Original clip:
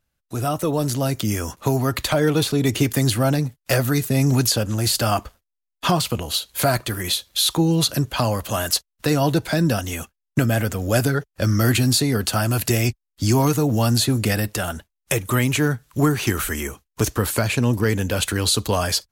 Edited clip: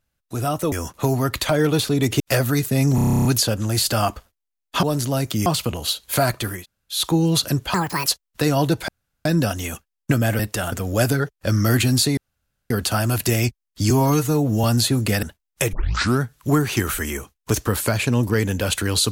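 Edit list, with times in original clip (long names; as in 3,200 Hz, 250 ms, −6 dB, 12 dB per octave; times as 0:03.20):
0:00.72–0:01.35: move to 0:05.92
0:02.83–0:03.59: remove
0:04.34: stutter 0.03 s, 11 plays
0:07.04–0:07.42: fill with room tone, crossfade 0.16 s
0:08.20–0:08.71: play speed 158%
0:09.53: splice in room tone 0.37 s
0:12.12: splice in room tone 0.53 s
0:13.32–0:13.81: time-stretch 1.5×
0:14.40–0:14.73: move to 0:10.67
0:15.23: tape start 0.48 s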